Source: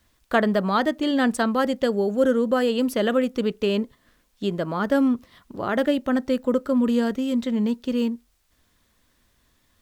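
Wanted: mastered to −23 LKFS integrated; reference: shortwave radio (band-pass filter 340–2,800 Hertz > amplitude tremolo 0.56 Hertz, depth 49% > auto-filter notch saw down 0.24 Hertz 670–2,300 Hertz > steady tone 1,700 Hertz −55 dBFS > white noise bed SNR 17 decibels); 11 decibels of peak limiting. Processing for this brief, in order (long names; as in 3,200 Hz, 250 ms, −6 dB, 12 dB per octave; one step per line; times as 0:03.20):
brickwall limiter −17.5 dBFS
band-pass filter 340–2,800 Hz
amplitude tremolo 0.56 Hz, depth 49%
auto-filter notch saw down 0.24 Hz 670–2,300 Hz
steady tone 1,700 Hz −55 dBFS
white noise bed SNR 17 dB
level +11.5 dB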